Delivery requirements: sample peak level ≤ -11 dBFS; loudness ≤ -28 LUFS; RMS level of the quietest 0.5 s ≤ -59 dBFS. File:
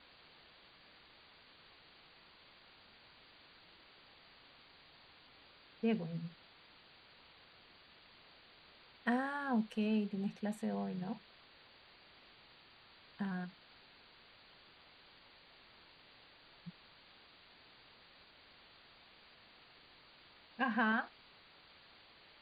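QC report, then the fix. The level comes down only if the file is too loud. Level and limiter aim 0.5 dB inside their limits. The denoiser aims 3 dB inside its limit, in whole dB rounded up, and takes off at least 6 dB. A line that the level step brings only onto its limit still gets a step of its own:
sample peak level -23.0 dBFS: OK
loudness -38.0 LUFS: OK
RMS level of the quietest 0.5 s -62 dBFS: OK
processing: none

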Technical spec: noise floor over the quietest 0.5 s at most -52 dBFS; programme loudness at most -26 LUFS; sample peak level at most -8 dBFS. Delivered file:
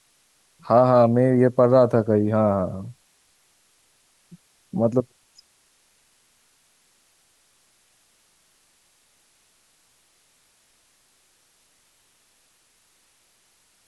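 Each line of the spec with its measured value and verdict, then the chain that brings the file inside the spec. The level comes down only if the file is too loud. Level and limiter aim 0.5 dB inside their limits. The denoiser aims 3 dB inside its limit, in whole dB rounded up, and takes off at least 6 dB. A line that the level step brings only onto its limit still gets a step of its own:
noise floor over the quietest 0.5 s -63 dBFS: OK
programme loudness -19.5 LUFS: fail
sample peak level -5.0 dBFS: fail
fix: gain -7 dB

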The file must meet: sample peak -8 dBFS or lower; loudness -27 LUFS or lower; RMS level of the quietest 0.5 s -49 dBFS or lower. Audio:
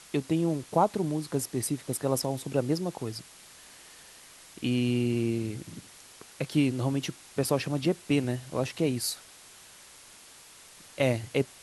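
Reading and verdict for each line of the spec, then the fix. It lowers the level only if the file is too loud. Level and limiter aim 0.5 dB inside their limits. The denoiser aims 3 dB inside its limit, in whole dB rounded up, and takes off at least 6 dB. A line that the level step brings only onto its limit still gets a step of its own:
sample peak -10.5 dBFS: OK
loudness -29.5 LUFS: OK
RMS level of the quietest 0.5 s -52 dBFS: OK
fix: none

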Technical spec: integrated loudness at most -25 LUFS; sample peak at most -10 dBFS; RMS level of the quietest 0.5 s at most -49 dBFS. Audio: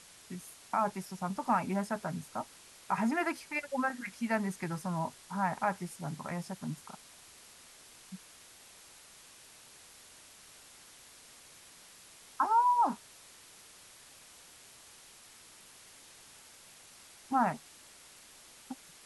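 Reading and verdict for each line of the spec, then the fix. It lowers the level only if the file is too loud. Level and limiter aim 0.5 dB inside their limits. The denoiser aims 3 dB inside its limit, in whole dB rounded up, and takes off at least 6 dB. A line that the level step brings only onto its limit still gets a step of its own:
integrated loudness -34.0 LUFS: OK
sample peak -16.5 dBFS: OK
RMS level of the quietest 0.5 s -56 dBFS: OK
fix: none

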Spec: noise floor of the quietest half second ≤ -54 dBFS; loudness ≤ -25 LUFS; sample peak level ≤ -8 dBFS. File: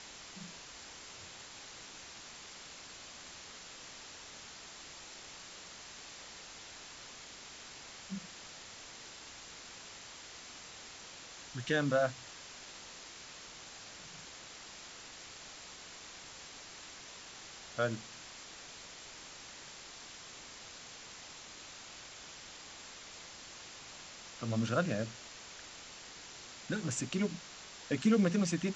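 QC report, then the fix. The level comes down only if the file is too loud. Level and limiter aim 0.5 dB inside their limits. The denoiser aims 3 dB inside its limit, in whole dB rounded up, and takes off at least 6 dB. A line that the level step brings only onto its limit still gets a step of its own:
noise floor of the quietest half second -51 dBFS: fail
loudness -41.5 LUFS: OK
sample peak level -17.5 dBFS: OK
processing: denoiser 6 dB, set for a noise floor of -51 dBFS

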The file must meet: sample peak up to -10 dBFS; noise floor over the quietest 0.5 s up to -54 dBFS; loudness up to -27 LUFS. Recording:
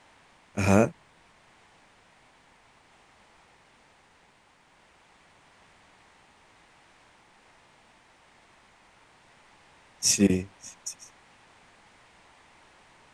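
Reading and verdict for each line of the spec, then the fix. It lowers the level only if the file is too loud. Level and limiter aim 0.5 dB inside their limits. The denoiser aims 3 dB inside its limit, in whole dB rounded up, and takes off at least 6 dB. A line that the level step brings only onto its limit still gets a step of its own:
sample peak -6.0 dBFS: fail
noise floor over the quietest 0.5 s -61 dBFS: OK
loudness -25.5 LUFS: fail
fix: gain -2 dB; limiter -10.5 dBFS

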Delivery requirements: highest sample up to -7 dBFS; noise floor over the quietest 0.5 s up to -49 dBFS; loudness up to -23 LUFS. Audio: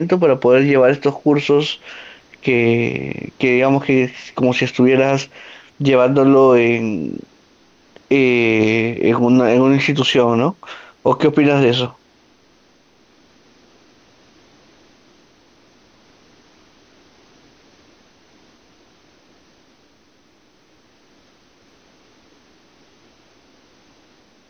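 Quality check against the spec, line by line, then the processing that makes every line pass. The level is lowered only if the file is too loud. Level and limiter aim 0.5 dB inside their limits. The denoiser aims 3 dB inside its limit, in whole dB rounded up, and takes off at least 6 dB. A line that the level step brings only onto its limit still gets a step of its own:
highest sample -3.0 dBFS: fail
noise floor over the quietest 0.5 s -54 dBFS: OK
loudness -15.0 LUFS: fail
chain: gain -8.5 dB

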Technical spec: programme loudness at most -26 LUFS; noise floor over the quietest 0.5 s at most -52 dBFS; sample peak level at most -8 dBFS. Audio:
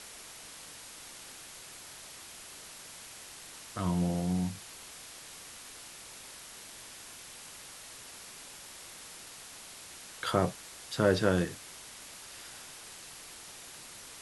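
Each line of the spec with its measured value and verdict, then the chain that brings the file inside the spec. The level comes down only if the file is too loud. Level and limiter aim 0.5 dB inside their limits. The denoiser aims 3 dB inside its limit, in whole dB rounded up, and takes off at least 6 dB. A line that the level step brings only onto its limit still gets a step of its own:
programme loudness -37.5 LUFS: OK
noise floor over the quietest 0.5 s -49 dBFS: fail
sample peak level -11.5 dBFS: OK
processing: denoiser 6 dB, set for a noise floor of -49 dBFS

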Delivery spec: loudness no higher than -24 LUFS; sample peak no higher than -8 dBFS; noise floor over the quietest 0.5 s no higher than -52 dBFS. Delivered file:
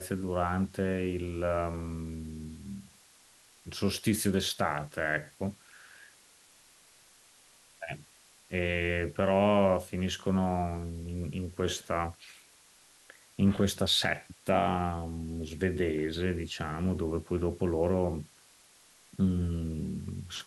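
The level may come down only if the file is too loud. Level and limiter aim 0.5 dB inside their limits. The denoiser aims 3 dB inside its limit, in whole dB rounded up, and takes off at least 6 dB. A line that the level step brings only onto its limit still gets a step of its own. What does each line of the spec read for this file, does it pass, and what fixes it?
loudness -31.0 LUFS: OK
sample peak -12.0 dBFS: OK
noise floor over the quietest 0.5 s -60 dBFS: OK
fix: none

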